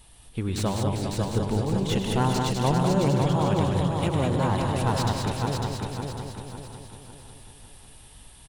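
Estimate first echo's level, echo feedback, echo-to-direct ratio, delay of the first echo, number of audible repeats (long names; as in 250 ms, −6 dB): −11.0 dB, repeats not evenly spaced, 2.0 dB, 101 ms, 23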